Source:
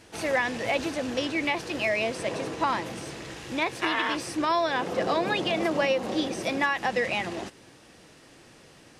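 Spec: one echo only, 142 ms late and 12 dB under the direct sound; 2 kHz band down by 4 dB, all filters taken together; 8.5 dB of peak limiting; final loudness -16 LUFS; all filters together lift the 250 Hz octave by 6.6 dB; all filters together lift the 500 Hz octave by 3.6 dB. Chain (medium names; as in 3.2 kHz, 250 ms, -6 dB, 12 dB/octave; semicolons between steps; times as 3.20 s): peaking EQ 250 Hz +7.5 dB; peaking EQ 500 Hz +3 dB; peaking EQ 2 kHz -5 dB; peak limiter -18.5 dBFS; delay 142 ms -12 dB; trim +11.5 dB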